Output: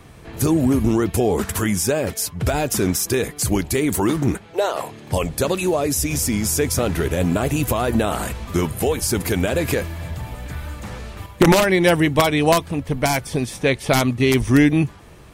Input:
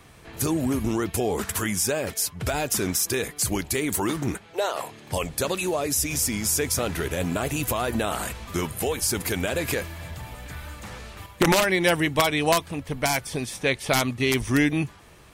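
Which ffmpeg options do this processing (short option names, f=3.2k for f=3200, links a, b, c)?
-af "tiltshelf=f=740:g=3.5,volume=5dB"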